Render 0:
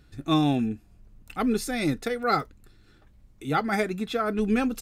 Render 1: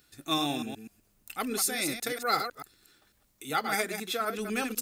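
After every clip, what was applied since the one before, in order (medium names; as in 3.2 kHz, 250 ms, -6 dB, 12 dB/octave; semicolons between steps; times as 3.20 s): chunks repeated in reverse 125 ms, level -7 dB; RIAA curve recording; trim -4 dB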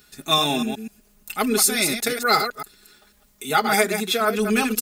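comb 4.8 ms, depth 76%; trim +8 dB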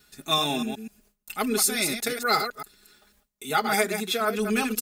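gate with hold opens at -45 dBFS; trim -4.5 dB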